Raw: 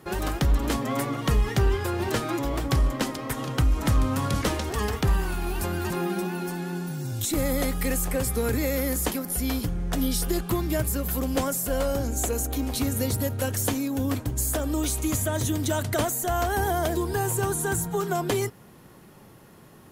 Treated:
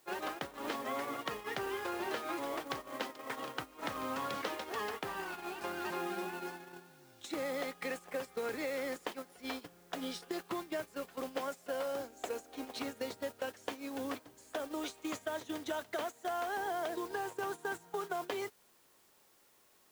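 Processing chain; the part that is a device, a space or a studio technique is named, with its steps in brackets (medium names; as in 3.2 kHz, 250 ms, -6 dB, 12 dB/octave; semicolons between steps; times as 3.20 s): baby monitor (band-pass 440–3800 Hz; compression 6:1, threshold -31 dBFS, peak gain reduction 8 dB; white noise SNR 15 dB; gate -36 dBFS, range -14 dB); trim -3 dB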